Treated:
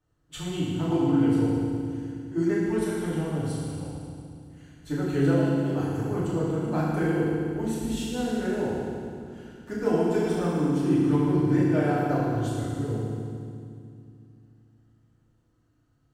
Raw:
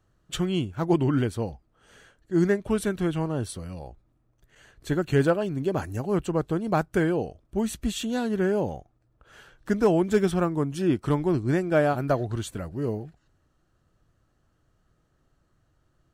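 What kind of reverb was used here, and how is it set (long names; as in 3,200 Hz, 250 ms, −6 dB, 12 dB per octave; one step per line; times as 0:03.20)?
feedback delay network reverb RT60 2.3 s, low-frequency decay 1.55×, high-frequency decay 0.95×, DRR −9.5 dB
level −12.5 dB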